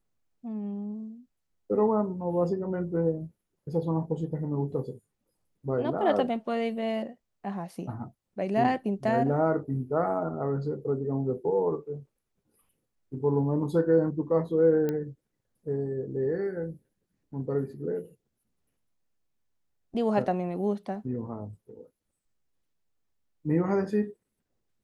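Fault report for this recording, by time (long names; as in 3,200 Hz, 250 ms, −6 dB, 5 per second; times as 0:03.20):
0:14.89: click −18 dBFS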